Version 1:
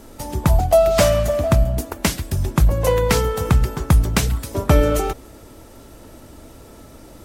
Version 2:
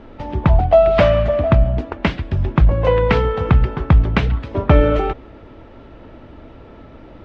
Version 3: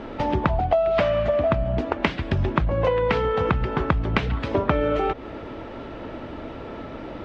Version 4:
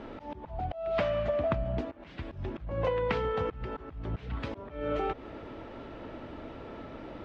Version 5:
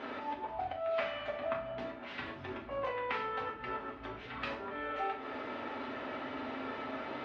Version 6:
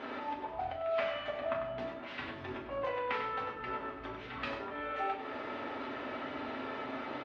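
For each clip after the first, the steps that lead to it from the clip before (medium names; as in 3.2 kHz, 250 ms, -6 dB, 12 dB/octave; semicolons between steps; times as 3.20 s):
low-pass 3.1 kHz 24 dB/octave; trim +2.5 dB
bass shelf 120 Hz -10.5 dB; compression 8:1, threshold -26 dBFS, peak gain reduction 18 dB; trim +7.5 dB
slow attack 224 ms; trim -8 dB
compression 6:1, threshold -36 dBFS, peak gain reduction 11.5 dB; band-pass filter 1.9 kHz, Q 0.65; reverberation RT60 0.55 s, pre-delay 4 ms, DRR -2 dB; trim +5.5 dB
delay 97 ms -8 dB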